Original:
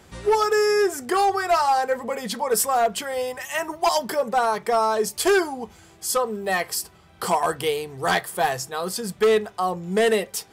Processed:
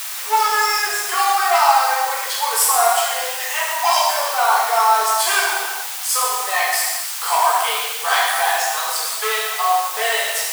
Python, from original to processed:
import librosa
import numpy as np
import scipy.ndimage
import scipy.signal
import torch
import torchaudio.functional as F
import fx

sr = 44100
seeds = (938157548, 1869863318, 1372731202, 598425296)

y = fx.rev_gated(x, sr, seeds[0], gate_ms=480, shape='falling', drr_db=-7.5)
y = fx.dmg_noise_colour(y, sr, seeds[1], colour='white', level_db=-28.0)
y = scipy.signal.sosfilt(scipy.signal.butter(4, 780.0, 'highpass', fs=sr, output='sos'), y)